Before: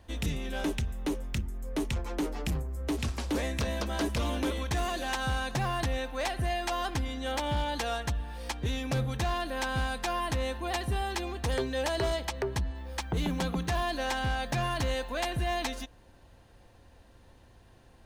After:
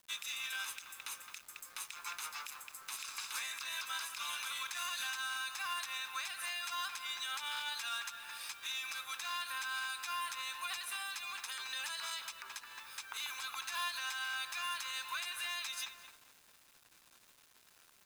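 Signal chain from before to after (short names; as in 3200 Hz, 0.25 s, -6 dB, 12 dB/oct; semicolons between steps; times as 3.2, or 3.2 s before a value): HPF 1200 Hz 24 dB/oct; high shelf 5400 Hz +5 dB; comb 0.8 ms, depth 48%; short-mantissa float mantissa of 2-bit; darkening echo 0.216 s, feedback 43%, low-pass 1900 Hz, level -12.5 dB; compressor 16:1, threshold -36 dBFS, peak gain reduction 9 dB; bit-crush 10-bit; limiter -32.5 dBFS, peak gain reduction 11.5 dB; gain +3 dB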